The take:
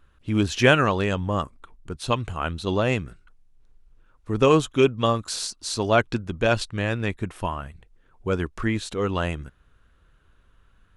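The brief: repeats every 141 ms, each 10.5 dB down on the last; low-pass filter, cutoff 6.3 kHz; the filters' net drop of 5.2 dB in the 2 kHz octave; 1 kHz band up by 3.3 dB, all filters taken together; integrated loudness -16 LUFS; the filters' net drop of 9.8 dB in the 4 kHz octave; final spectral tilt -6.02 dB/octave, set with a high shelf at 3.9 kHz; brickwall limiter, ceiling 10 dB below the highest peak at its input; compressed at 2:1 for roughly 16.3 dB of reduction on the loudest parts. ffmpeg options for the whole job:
-af "lowpass=6300,equalizer=f=1000:t=o:g=7.5,equalizer=f=2000:t=o:g=-8,highshelf=f=3900:g=-9,equalizer=f=4000:t=o:g=-4.5,acompressor=threshold=0.00708:ratio=2,alimiter=level_in=2:limit=0.0631:level=0:latency=1,volume=0.501,aecho=1:1:141|282|423:0.299|0.0896|0.0269,volume=18.8"

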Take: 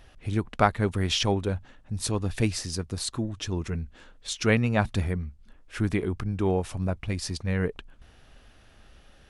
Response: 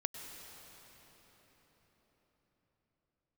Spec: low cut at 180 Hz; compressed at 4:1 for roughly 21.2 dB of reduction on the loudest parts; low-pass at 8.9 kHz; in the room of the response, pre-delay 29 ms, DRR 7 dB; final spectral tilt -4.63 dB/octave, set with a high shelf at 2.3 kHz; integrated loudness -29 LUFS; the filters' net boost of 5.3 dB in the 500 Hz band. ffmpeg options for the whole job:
-filter_complex "[0:a]highpass=180,lowpass=8900,equalizer=f=500:t=o:g=7,highshelf=f=2300:g=-6,acompressor=threshold=0.01:ratio=4,asplit=2[s0][s1];[1:a]atrim=start_sample=2205,adelay=29[s2];[s1][s2]afir=irnorm=-1:irlink=0,volume=0.422[s3];[s0][s3]amix=inputs=2:normalize=0,volume=4.47"

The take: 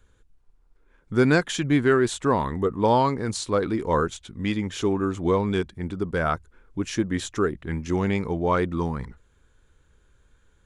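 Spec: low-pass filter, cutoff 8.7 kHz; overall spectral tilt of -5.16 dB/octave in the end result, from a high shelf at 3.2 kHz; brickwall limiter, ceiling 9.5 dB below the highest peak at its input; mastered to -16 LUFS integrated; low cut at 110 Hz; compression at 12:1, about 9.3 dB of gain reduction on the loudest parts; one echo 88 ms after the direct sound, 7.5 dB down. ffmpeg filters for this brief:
-af "highpass=110,lowpass=8700,highshelf=f=3200:g=-3,acompressor=threshold=0.0631:ratio=12,alimiter=limit=0.0668:level=0:latency=1,aecho=1:1:88:0.422,volume=7.94"

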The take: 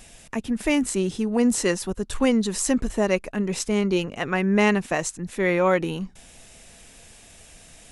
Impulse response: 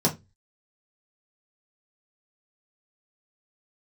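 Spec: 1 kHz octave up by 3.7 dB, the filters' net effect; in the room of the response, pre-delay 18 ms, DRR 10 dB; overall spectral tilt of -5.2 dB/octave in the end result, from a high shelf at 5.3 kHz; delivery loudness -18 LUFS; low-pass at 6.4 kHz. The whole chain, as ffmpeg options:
-filter_complex "[0:a]lowpass=6400,equalizer=f=1000:t=o:g=4.5,highshelf=f=5300:g=5,asplit=2[s0][s1];[1:a]atrim=start_sample=2205,adelay=18[s2];[s1][s2]afir=irnorm=-1:irlink=0,volume=0.0794[s3];[s0][s3]amix=inputs=2:normalize=0,volume=1.5"

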